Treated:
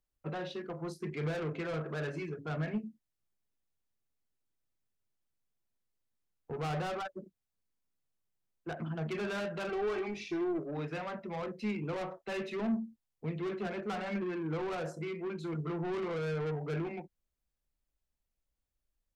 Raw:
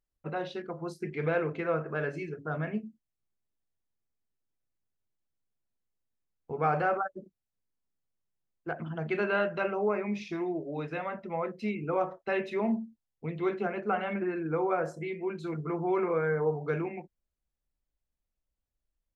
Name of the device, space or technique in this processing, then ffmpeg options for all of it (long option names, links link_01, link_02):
one-band saturation: -filter_complex "[0:a]acrossover=split=220|4300[link_01][link_02][link_03];[link_02]asoftclip=type=tanh:threshold=-35.5dB[link_04];[link_01][link_04][link_03]amix=inputs=3:normalize=0,asettb=1/sr,asplit=3[link_05][link_06][link_07];[link_05]atrim=end=9.694[link_08];[link_06]atrim=start=9.69:end=10.59,asetpts=PTS-STARTPTS,afade=type=in:duration=0.004:curve=qsin,afade=type=out:start_time=0.896:duration=0.004:curve=qsin,aecho=1:1:2.6:0.67,atrim=end_sample=39690[link_09];[link_07]atrim=start=10.586[link_10];[link_08][link_09]acrossfade=duration=0.004:curve1=hsin:curve2=qsin[link_11];[link_11][link_10]acrossfade=duration=0.004:curve1=qsin:curve2=hsin"